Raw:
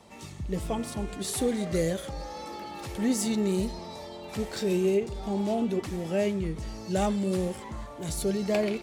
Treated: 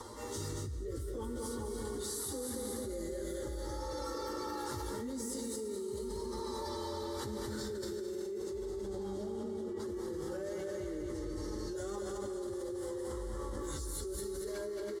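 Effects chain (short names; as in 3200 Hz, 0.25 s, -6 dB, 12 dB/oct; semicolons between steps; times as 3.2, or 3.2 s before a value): Doppler pass-by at 3.9, 10 m/s, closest 3 m; dynamic EQ 190 Hz, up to +4 dB, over -48 dBFS, Q 3.6; vibrato 11 Hz 5.2 cents; rotary speaker horn 0.7 Hz, later 6 Hz, at 4.73; plain phase-vocoder stretch 1.7×; fixed phaser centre 680 Hz, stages 6; feedback echo 0.222 s, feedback 52%, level -4.5 dB; non-linear reverb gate 0.38 s rising, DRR 7 dB; fast leveller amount 100%; gain -1.5 dB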